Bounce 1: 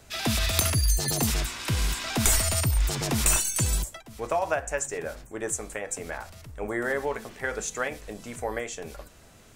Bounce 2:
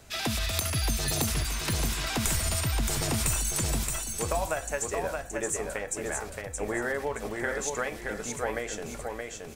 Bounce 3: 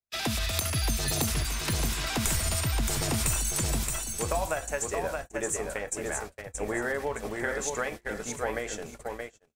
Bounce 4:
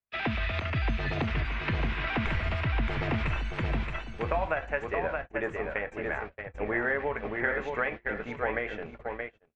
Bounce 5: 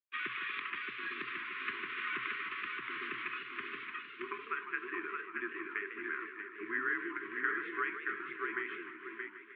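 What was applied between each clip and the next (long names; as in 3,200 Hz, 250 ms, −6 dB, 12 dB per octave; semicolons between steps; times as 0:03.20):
downward compressor 3 to 1, threshold −27 dBFS, peak gain reduction 7.5 dB; on a send: repeating echo 623 ms, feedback 30%, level −4 dB
noise gate −36 dBFS, range −47 dB
low-pass filter 2,700 Hz 24 dB per octave; dynamic equaliser 2,100 Hz, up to +5 dB, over −48 dBFS, Q 1.2
linear-phase brick-wall band-stop 520–1,100 Hz; single-sideband voice off tune −96 Hz 500–3,500 Hz; feedback echo with a swinging delay time 152 ms, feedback 72%, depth 184 cents, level −10.5 dB; level −4 dB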